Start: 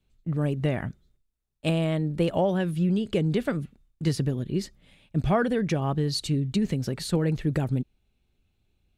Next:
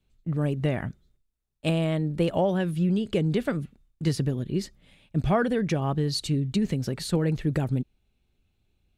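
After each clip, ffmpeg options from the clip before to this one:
ffmpeg -i in.wav -af anull out.wav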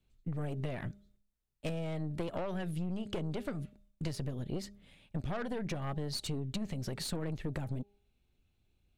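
ffmpeg -i in.wav -af "aeval=exprs='(tanh(15.8*val(0)+0.65)-tanh(0.65))/15.8':channel_layout=same,bandreject=frequency=202.5:width_type=h:width=4,bandreject=frequency=405:width_type=h:width=4,bandreject=frequency=607.5:width_type=h:width=4,bandreject=frequency=810:width_type=h:width=4,acompressor=threshold=-33dB:ratio=6" out.wav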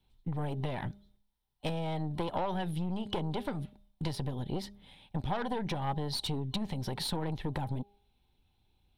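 ffmpeg -i in.wav -af "superequalizer=9b=3.16:13b=2:15b=0.447,volume=2dB" out.wav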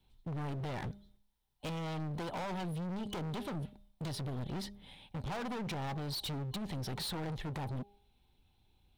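ffmpeg -i in.wav -af "asoftclip=type=hard:threshold=-38dB,volume=1.5dB" out.wav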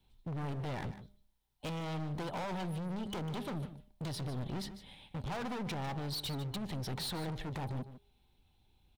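ffmpeg -i in.wav -af "aecho=1:1:150:0.224" out.wav

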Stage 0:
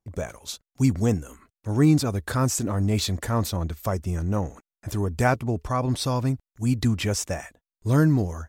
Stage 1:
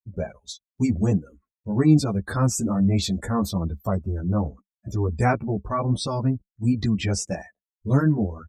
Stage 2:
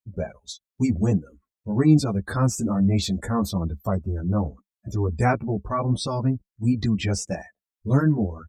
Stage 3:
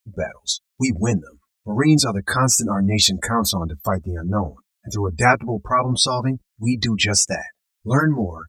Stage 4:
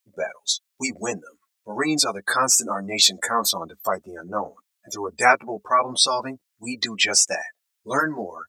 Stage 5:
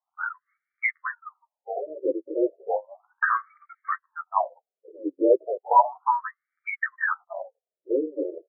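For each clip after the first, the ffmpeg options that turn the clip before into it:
ffmpeg -i in.wav -filter_complex "[0:a]afftdn=noise_reduction=32:noise_floor=-36,equalizer=frequency=200:width=5.4:gain=8,asplit=2[link_01][link_02];[link_02]adelay=11.1,afreqshift=-2.9[link_03];[link_01][link_03]amix=inputs=2:normalize=1,volume=3dB" out.wav
ffmpeg -i in.wav -af "deesser=0.5" out.wav
ffmpeg -i in.wav -af "tiltshelf=frequency=880:gain=-7.5,volume=7.5dB" out.wav
ffmpeg -i in.wav -af "highpass=460" out.wav
ffmpeg -i in.wav -af "highpass=frequency=370:width_type=q:width=0.5412,highpass=frequency=370:width_type=q:width=1.307,lowpass=frequency=3200:width_type=q:width=0.5176,lowpass=frequency=3200:width_type=q:width=0.7071,lowpass=frequency=3200:width_type=q:width=1.932,afreqshift=-160,acontrast=63,afftfilt=real='re*between(b*sr/1024,410*pow(1700/410,0.5+0.5*sin(2*PI*0.34*pts/sr))/1.41,410*pow(1700/410,0.5+0.5*sin(2*PI*0.34*pts/sr))*1.41)':imag='im*between(b*sr/1024,410*pow(1700/410,0.5+0.5*sin(2*PI*0.34*pts/sr))/1.41,410*pow(1700/410,0.5+0.5*sin(2*PI*0.34*pts/sr))*1.41)':win_size=1024:overlap=0.75" out.wav

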